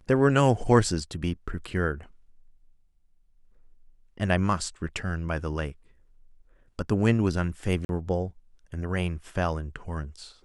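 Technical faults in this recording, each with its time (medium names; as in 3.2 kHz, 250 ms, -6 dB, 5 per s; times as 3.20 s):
7.85–7.89 s: dropout 41 ms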